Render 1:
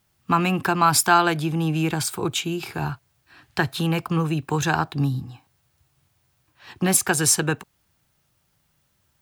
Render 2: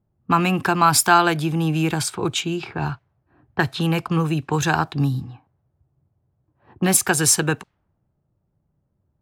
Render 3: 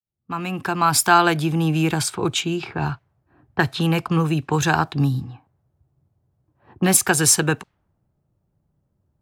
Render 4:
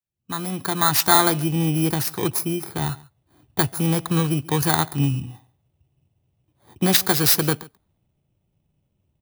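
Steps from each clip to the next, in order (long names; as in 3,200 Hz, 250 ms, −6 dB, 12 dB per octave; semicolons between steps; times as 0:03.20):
low-pass that shuts in the quiet parts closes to 500 Hz, open at −20 dBFS; level +2 dB
fade in at the beginning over 1.26 s; level +1 dB
samples in bit-reversed order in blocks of 16 samples; single-tap delay 138 ms −22 dB; level −1 dB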